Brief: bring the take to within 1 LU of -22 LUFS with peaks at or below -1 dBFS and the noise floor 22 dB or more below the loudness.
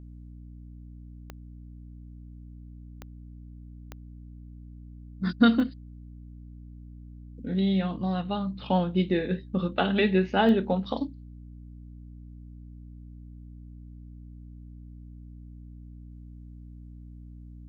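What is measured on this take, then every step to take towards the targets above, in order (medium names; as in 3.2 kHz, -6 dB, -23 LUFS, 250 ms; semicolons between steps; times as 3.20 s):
clicks found 5; hum 60 Hz; highest harmonic 300 Hz; hum level -43 dBFS; loudness -26.5 LUFS; peak level -8.0 dBFS; loudness target -22.0 LUFS
-> de-click; hum notches 60/120/180/240/300 Hz; trim +4.5 dB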